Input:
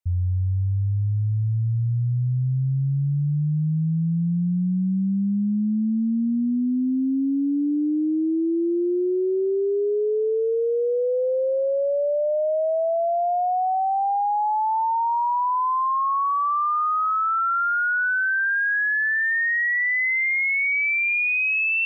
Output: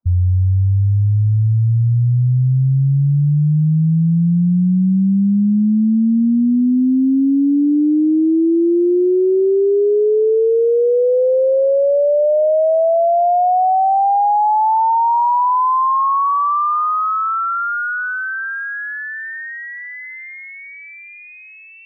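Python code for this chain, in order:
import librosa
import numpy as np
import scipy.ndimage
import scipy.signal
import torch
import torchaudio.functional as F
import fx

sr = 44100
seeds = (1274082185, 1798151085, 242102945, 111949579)

y = scipy.signal.sosfilt(scipy.signal.butter(4, 1200.0, 'lowpass', fs=sr, output='sos'), x)
y = fx.echo_thinned(y, sr, ms=1040, feedback_pct=17, hz=580.0, wet_db=-19.0)
y = fx.spec_gate(y, sr, threshold_db=-25, keep='strong')
y = F.gain(torch.from_numpy(y), 8.5).numpy()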